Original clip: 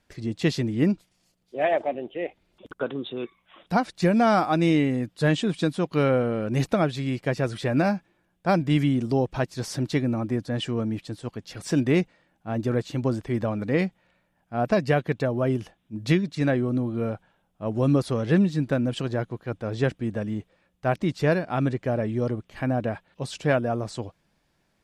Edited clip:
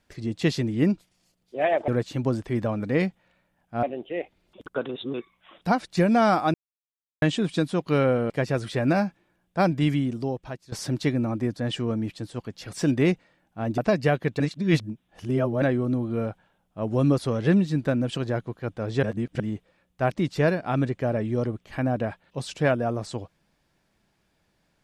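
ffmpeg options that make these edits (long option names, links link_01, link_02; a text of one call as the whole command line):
ffmpeg -i in.wav -filter_complex "[0:a]asplit=14[link_01][link_02][link_03][link_04][link_05][link_06][link_07][link_08][link_09][link_10][link_11][link_12][link_13][link_14];[link_01]atrim=end=1.882[link_15];[link_02]atrim=start=12.668:end=14.622[link_16];[link_03]atrim=start=1.878:end=2.942[link_17];[link_04]atrim=start=2.938:end=3.192,asetpts=PTS-STARTPTS,areverse[link_18];[link_05]atrim=start=3.188:end=4.59,asetpts=PTS-STARTPTS,afade=type=out:start_time=1.398:duration=0.004:curve=hsin[link_19];[link_06]atrim=start=4.59:end=5.27,asetpts=PTS-STARTPTS,volume=0[link_20];[link_07]atrim=start=5.27:end=6.352,asetpts=PTS-STARTPTS,afade=type=in:duration=0.004:curve=hsin[link_21];[link_08]atrim=start=7.188:end=9.61,asetpts=PTS-STARTPTS,afade=type=out:start_time=1.422:duration=1:silence=0.149624[link_22];[link_09]atrim=start=9.61:end=12.672,asetpts=PTS-STARTPTS,afade=type=in:duration=0.004:curve=hsin:silence=0.149624[link_23];[link_10]atrim=start=14.618:end=15.242[link_24];[link_11]atrim=start=15.238:end=16.462,asetpts=PTS-STARTPTS,areverse[link_25];[link_12]atrim=start=16.458:end=19.872[link_26];[link_13]atrim=start=19.868:end=20.242,asetpts=PTS-STARTPTS,areverse[link_27];[link_14]atrim=start=20.238[link_28];[link_15][link_16]acrossfade=duration=0.004:curve1=hsin:curve2=hsin[link_29];[link_29][link_17]acrossfade=duration=0.004:curve1=hsin:curve2=hsin[link_30];[link_30][link_18]acrossfade=duration=0.004:curve1=hsin:curve2=hsin[link_31];[link_19][link_20][link_21]concat=n=3:v=0:a=1[link_32];[link_31][link_32]acrossfade=duration=0.004:curve1=hsin:curve2=hsin[link_33];[link_22][link_23]concat=n=2:v=0:a=1[link_34];[link_33][link_34]acrossfade=duration=0.004:curve1=hsin:curve2=hsin[link_35];[link_35][link_24]acrossfade=duration=0.004:curve1=hsin:curve2=hsin[link_36];[link_36][link_25]acrossfade=duration=0.004:curve1=hsin:curve2=hsin[link_37];[link_37][link_26]acrossfade=duration=0.004:curve1=hsin:curve2=hsin[link_38];[link_38][link_27]acrossfade=duration=0.004:curve1=hsin:curve2=hsin[link_39];[link_39][link_28]acrossfade=duration=0.004:curve1=hsin:curve2=hsin" out.wav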